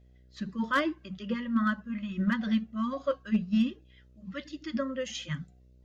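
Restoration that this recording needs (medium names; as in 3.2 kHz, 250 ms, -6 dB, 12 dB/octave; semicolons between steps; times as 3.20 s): clip repair -18 dBFS; de-hum 62.5 Hz, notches 10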